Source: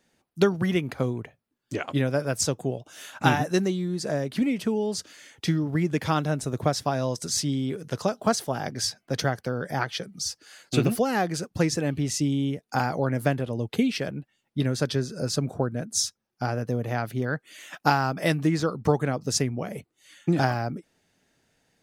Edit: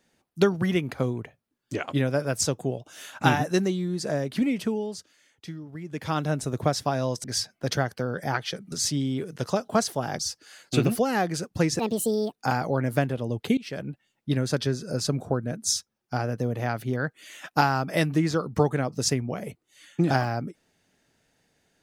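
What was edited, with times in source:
4.62–6.3 dip -13.5 dB, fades 0.46 s
7.24–8.71 move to 10.19
11.79–12.61 speed 154%
13.86–14.15 fade in, from -23.5 dB

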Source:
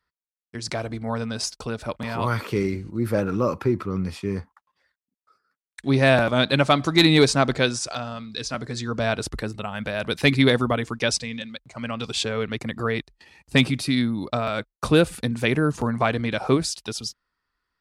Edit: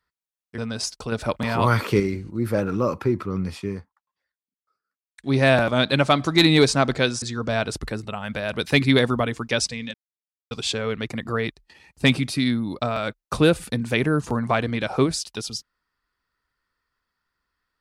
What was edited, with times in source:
0.58–1.18 cut
1.72–2.6 gain +5 dB
4.23–5.97 dip -13 dB, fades 0.25 s
7.82–8.73 cut
11.45–12.02 mute

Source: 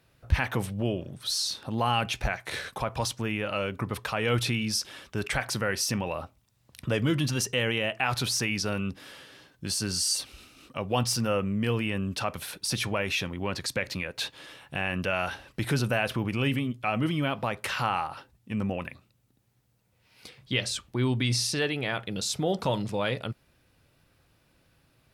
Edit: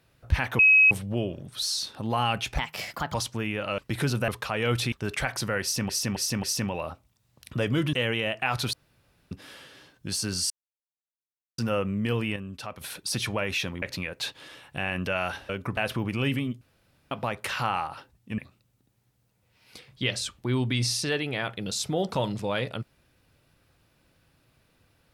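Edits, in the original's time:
0.59 add tone 2550 Hz -13.5 dBFS 0.32 s
2.26–2.99 speed 130%
3.63–3.91 swap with 15.47–15.97
4.55–5.05 cut
5.75–6.02 loop, 4 plays
7.25–7.51 cut
8.31–8.89 room tone
10.08–11.16 mute
11.94–12.39 gain -7.5 dB
13.4–13.8 cut
16.81–17.31 room tone
18.58–18.88 cut

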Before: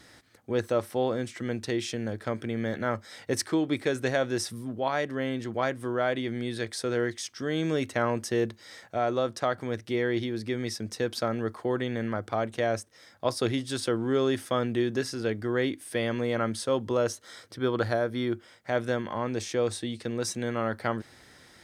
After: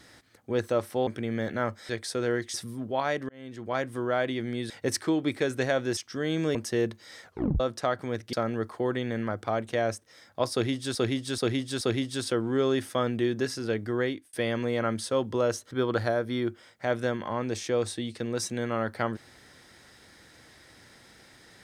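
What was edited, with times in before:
1.07–2.33 cut
3.15–4.42 swap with 6.58–7.23
5.17–5.74 fade in
7.81–8.14 cut
8.83 tape stop 0.36 s
9.92–11.18 cut
13.37–13.8 loop, 4 plays
15.56–15.89 fade out
17.27–17.56 cut

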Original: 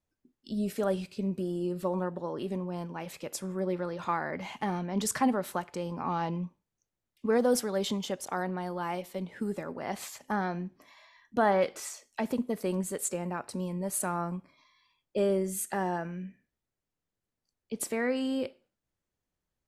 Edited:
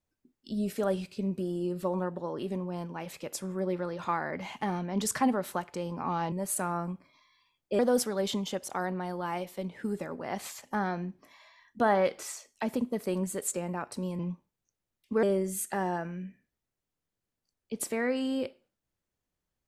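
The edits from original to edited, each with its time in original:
6.32–7.36 swap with 13.76–15.23

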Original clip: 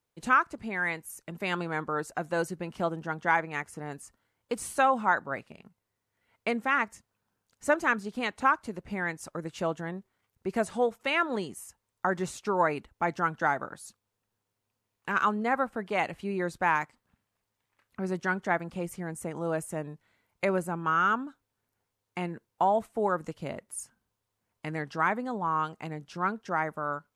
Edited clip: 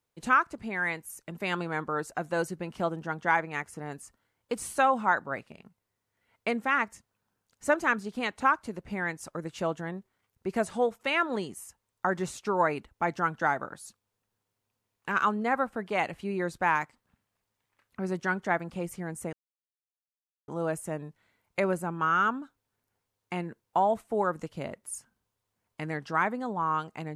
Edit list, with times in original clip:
19.33 insert silence 1.15 s

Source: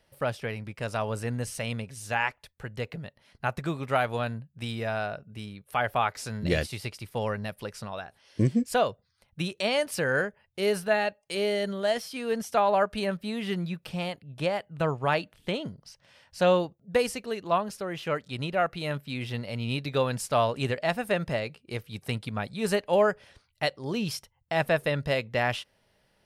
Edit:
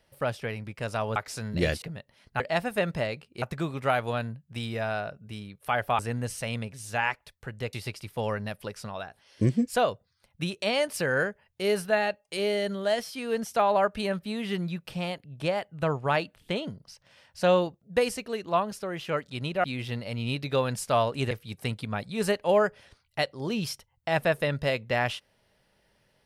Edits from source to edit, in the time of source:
1.16–2.9 swap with 6.05–6.71
18.62–19.06 cut
20.73–21.75 move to 3.48

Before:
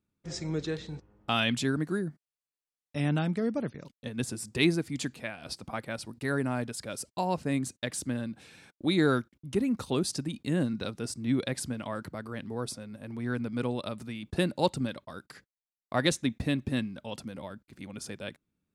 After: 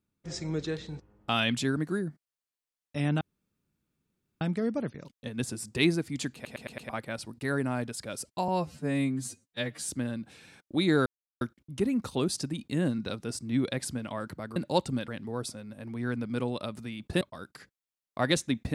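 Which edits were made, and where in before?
3.21 insert room tone 1.20 s
5.14 stutter in place 0.11 s, 5 plays
7.28–7.98 stretch 2×
9.16 insert silence 0.35 s
14.44–14.96 move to 12.31

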